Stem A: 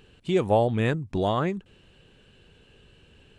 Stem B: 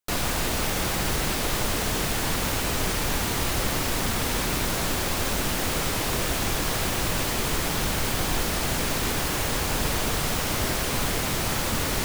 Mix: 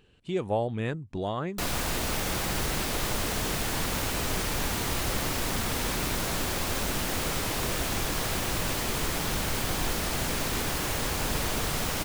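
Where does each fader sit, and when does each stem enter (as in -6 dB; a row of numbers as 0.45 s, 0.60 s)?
-6.5 dB, -3.5 dB; 0.00 s, 1.50 s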